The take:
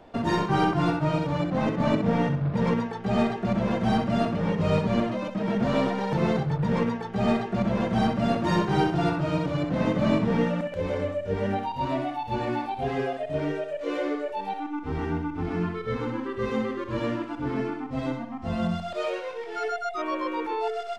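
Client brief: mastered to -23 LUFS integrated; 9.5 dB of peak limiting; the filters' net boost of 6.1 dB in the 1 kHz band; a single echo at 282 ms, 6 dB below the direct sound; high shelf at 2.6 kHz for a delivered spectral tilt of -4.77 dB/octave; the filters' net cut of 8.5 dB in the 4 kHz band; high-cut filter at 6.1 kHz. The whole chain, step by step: low-pass 6.1 kHz; peaking EQ 1 kHz +9 dB; treble shelf 2.6 kHz -6 dB; peaking EQ 4 kHz -7 dB; peak limiter -18 dBFS; delay 282 ms -6 dB; trim +3.5 dB

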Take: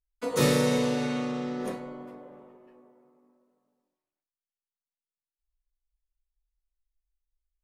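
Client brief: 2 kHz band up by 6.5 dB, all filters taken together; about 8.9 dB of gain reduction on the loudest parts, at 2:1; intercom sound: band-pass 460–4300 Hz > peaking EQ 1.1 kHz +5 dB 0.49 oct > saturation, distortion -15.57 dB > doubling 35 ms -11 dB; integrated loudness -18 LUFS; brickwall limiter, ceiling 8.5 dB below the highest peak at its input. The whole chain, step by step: peaking EQ 2 kHz +7.5 dB; compression 2:1, threshold -34 dBFS; peak limiter -26 dBFS; band-pass 460–4300 Hz; peaking EQ 1.1 kHz +5 dB 0.49 oct; saturation -34 dBFS; doubling 35 ms -11 dB; trim +23.5 dB

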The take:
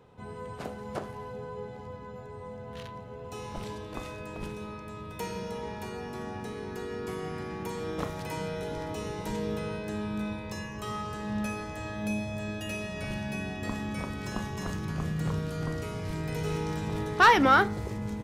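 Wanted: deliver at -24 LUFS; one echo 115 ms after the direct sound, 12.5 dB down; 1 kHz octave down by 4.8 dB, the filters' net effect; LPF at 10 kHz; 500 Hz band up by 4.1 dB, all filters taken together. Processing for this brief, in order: low-pass 10 kHz; peaking EQ 500 Hz +6.5 dB; peaking EQ 1 kHz -8 dB; delay 115 ms -12.5 dB; trim +8 dB

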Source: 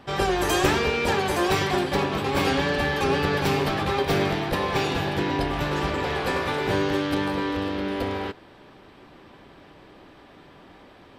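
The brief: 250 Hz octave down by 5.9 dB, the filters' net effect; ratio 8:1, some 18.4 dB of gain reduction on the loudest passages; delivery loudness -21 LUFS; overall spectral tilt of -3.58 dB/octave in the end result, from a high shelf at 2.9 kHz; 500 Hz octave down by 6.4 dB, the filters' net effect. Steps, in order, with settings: peaking EQ 250 Hz -6 dB; peaking EQ 500 Hz -6.5 dB; treble shelf 2.9 kHz +5 dB; compression 8:1, threshold -38 dBFS; trim +19.5 dB

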